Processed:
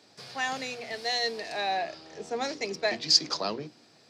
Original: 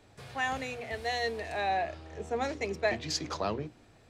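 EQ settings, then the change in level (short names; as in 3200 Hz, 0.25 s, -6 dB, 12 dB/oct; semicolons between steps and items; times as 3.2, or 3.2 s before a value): HPF 150 Hz 24 dB/oct; bell 4900 Hz +15 dB 0.7 oct; 0.0 dB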